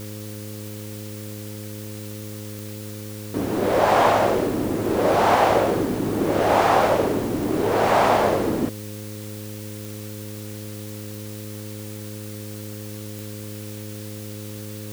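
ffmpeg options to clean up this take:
ffmpeg -i in.wav -af "adeclick=threshold=4,bandreject=frequency=105:width_type=h:width=4,bandreject=frequency=210:width_type=h:width=4,bandreject=frequency=315:width_type=h:width=4,bandreject=frequency=420:width_type=h:width=4,bandreject=frequency=525:width_type=h:width=4,afwtdn=0.0079" out.wav

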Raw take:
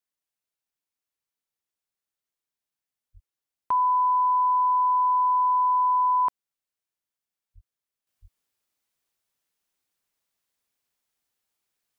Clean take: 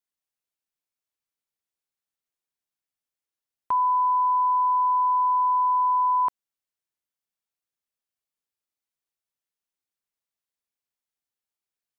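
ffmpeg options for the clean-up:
ffmpeg -i in.wav -filter_complex "[0:a]asplit=3[link_01][link_02][link_03];[link_01]afade=type=out:start_time=3.13:duration=0.02[link_04];[link_02]highpass=frequency=140:width=0.5412,highpass=frequency=140:width=1.3066,afade=type=in:start_time=3.13:duration=0.02,afade=type=out:start_time=3.25:duration=0.02[link_05];[link_03]afade=type=in:start_time=3.25:duration=0.02[link_06];[link_04][link_05][link_06]amix=inputs=3:normalize=0,asplit=3[link_07][link_08][link_09];[link_07]afade=type=out:start_time=7.54:duration=0.02[link_10];[link_08]highpass=frequency=140:width=0.5412,highpass=frequency=140:width=1.3066,afade=type=in:start_time=7.54:duration=0.02,afade=type=out:start_time=7.66:duration=0.02[link_11];[link_09]afade=type=in:start_time=7.66:duration=0.02[link_12];[link_10][link_11][link_12]amix=inputs=3:normalize=0,asplit=3[link_13][link_14][link_15];[link_13]afade=type=out:start_time=8.21:duration=0.02[link_16];[link_14]highpass=frequency=140:width=0.5412,highpass=frequency=140:width=1.3066,afade=type=in:start_time=8.21:duration=0.02,afade=type=out:start_time=8.33:duration=0.02[link_17];[link_15]afade=type=in:start_time=8.33:duration=0.02[link_18];[link_16][link_17][link_18]amix=inputs=3:normalize=0,asetnsamples=nb_out_samples=441:pad=0,asendcmd='8.07 volume volume -9dB',volume=0dB" out.wav

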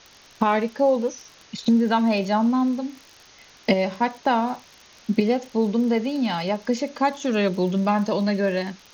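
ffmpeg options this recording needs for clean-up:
ffmpeg -i in.wav -af "adeclick=threshold=4,afwtdn=0.005" out.wav

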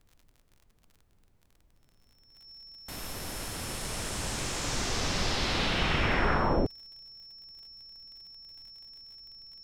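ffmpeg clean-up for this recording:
ffmpeg -i in.wav -af "adeclick=threshold=4,bandreject=frequency=5400:width=30,agate=range=-21dB:threshold=-56dB" out.wav

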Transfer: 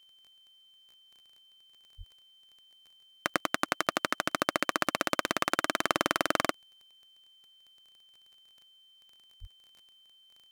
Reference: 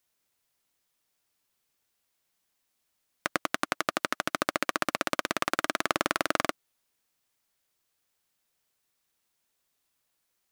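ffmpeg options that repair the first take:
ffmpeg -i in.wav -filter_complex "[0:a]adeclick=threshold=4,bandreject=frequency=3100:width=30,asplit=3[link_01][link_02][link_03];[link_01]afade=type=out:start_time=1.97:duration=0.02[link_04];[link_02]highpass=frequency=140:width=0.5412,highpass=frequency=140:width=1.3066,afade=type=in:start_time=1.97:duration=0.02,afade=type=out:start_time=2.09:duration=0.02[link_05];[link_03]afade=type=in:start_time=2.09:duration=0.02[link_06];[link_04][link_05][link_06]amix=inputs=3:normalize=0,asplit=3[link_07][link_08][link_09];[link_07]afade=type=out:start_time=9.4:duration=0.02[link_10];[link_08]highpass=frequency=140:width=0.5412,highpass=frequency=140:width=1.3066,afade=type=in:start_time=9.4:duration=0.02,afade=type=out:start_time=9.52:duration=0.02[link_11];[link_09]afade=type=in:start_time=9.52:duration=0.02[link_12];[link_10][link_11][link_12]amix=inputs=3:normalize=0" out.wav

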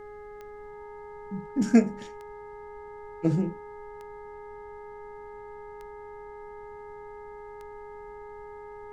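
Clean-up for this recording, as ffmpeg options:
ffmpeg -i in.wav -af "adeclick=threshold=4,bandreject=frequency=416.7:width_type=h:width=4,bandreject=frequency=833.4:width_type=h:width=4,bandreject=frequency=1250.1:width_type=h:width=4,bandreject=frequency=1666.8:width_type=h:width=4,bandreject=frequency=2083.5:width_type=h:width=4,bandreject=frequency=920:width=30,afftdn=noise_reduction=30:noise_floor=-43" out.wav

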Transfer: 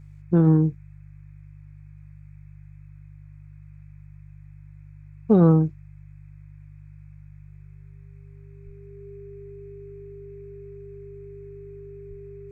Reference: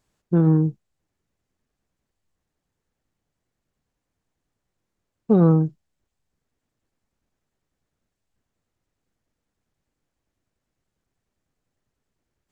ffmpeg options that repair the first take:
ffmpeg -i in.wav -filter_complex "[0:a]bandreject=frequency=49.7:width_type=h:width=4,bandreject=frequency=99.4:width_type=h:width=4,bandreject=frequency=149.1:width_type=h:width=4,bandreject=frequency=400:width=30,asplit=3[link_01][link_02][link_03];[link_01]afade=type=out:start_time=8.65:duration=0.02[link_04];[link_02]highpass=frequency=140:width=0.5412,highpass=frequency=140:width=1.3066,afade=type=in:start_time=8.65:duration=0.02,afade=type=out:start_time=8.77:duration=0.02[link_05];[link_03]afade=type=in:start_time=8.77:duration=0.02[link_06];[link_04][link_05][link_06]amix=inputs=3:normalize=0,asplit=3[link_07][link_08][link_09];[link_07]afade=type=out:start_time=12.09:duration=0.02[link_10];[link_08]highpass=frequency=140:width=0.5412,highpass=frequency=140:width=1.3066,afade=type=in:start_time=12.09:duration=0.02,afade=type=out:start_time=12.21:duration=0.02[link_11];[link_09]afade=type=in:start_time=12.21:duration=0.02[link_12];[link_10][link_11][link_12]amix=inputs=3:normalize=0,afftdn=noise_reduction=30:noise_floor=-45" out.wav

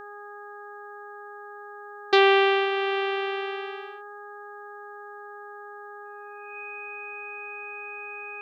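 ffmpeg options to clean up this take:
ffmpeg -i in.wav -af "bandreject=frequency=411.8:width_type=h:width=4,bandreject=frequency=823.6:width_type=h:width=4,bandreject=frequency=1235.4:width_type=h:width=4,bandreject=frequency=1647.2:width_type=h:width=4,bandreject=frequency=2500:width=30" out.wav

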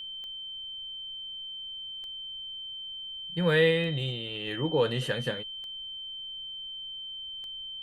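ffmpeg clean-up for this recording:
ffmpeg -i in.wav -af "adeclick=threshold=4,bandreject=frequency=3100:width=30,agate=range=-21dB:threshold=-32dB" out.wav

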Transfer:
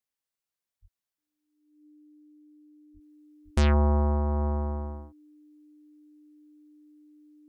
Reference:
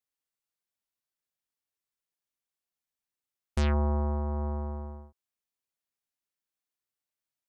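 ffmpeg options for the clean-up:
ffmpeg -i in.wav -filter_complex "[0:a]bandreject=frequency=300:width=30,asplit=3[link_01][link_02][link_03];[link_01]afade=type=out:start_time=0.81:duration=0.02[link_04];[link_02]highpass=frequency=140:width=0.5412,highpass=frequency=140:width=1.3066,afade=type=in:start_time=0.81:duration=0.02,afade=type=out:start_time=0.93:duration=0.02[link_05];[link_03]afade=type=in:start_time=0.93:duration=0.02[link_06];[link_04][link_05][link_06]amix=inputs=3:normalize=0,asplit=3[link_07][link_08][link_09];[link_07]afade=type=out:start_time=2.93:duration=0.02[link_10];[link_08]highpass=frequency=140:width=0.5412,highpass=frequency=140:width=1.3066,afade=type=in:start_time=2.93:duration=0.02,afade=type=out:start_time=3.05:duration=0.02[link_11];[link_09]afade=type=in:start_time=3.05:duration=0.02[link_12];[link_10][link_11][link_12]amix=inputs=3:normalize=0,asplit=3[link_13][link_14][link_15];[link_13]afade=type=out:start_time=3.44:duration=0.02[link_16];[link_14]highpass=frequency=140:width=0.5412,highpass=frequency=140:width=1.3066,afade=type=in:start_time=3.44:duration=0.02,afade=type=out:start_time=3.56:duration=0.02[link_17];[link_15]afade=type=in:start_time=3.56:duration=0.02[link_18];[link_16][link_17][link_18]amix=inputs=3:normalize=0,asetnsamples=nb_out_samples=441:pad=0,asendcmd='3.01 volume volume -4.5dB',volume=0dB" out.wav

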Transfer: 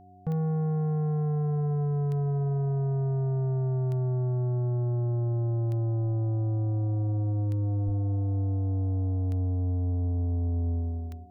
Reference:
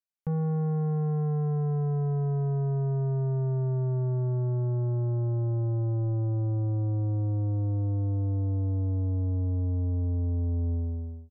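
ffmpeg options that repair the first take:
ffmpeg -i in.wav -filter_complex "[0:a]adeclick=threshold=4,bandreject=frequency=94.8:width_type=h:width=4,bandreject=frequency=189.6:width_type=h:width=4,bandreject=frequency=284.4:width_type=h:width=4,bandreject=frequency=379.2:width_type=h:width=4,bandreject=frequency=720:width=30,asplit=3[link_01][link_02][link_03];[link_01]afade=type=out:start_time=7.85:duration=0.02[link_04];[link_02]highpass=frequency=140:width=0.5412,highpass=frequency=140:width=1.3066,afade=type=in:start_time=7.85:duration=0.02,afade=type=out:start_time=7.97:duration=0.02[link_05];[link_03]afade=type=in:start_time=7.97:duration=0.02[link_06];[link_04][link_05][link_06]amix=inputs=3:normalize=0" out.wav

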